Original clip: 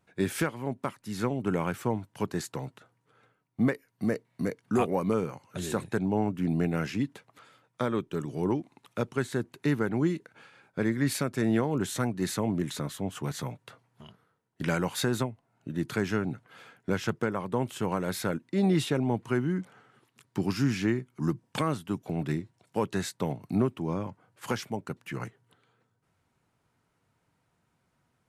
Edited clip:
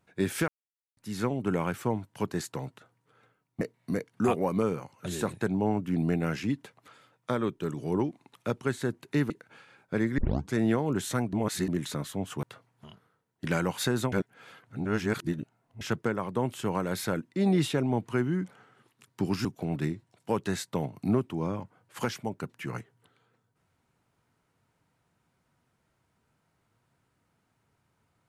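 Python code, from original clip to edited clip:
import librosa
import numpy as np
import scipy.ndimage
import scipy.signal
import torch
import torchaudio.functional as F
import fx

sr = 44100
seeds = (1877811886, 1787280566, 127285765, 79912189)

y = fx.edit(x, sr, fx.silence(start_s=0.48, length_s=0.49),
    fx.cut(start_s=3.61, length_s=0.51),
    fx.cut(start_s=9.81, length_s=0.34),
    fx.tape_start(start_s=11.03, length_s=0.36),
    fx.reverse_span(start_s=12.18, length_s=0.35),
    fx.cut(start_s=13.28, length_s=0.32),
    fx.reverse_span(start_s=15.29, length_s=1.69),
    fx.cut(start_s=20.62, length_s=1.3), tone=tone)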